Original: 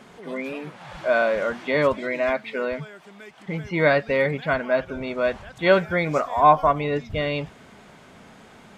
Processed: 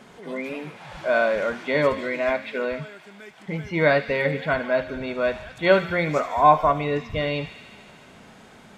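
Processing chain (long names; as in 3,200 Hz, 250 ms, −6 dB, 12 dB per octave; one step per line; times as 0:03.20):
notch filter 1,200 Hz, Q 28
hum removal 89.62 Hz, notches 39
on a send: delay with a high-pass on its return 74 ms, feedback 79%, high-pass 2,300 Hz, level −11 dB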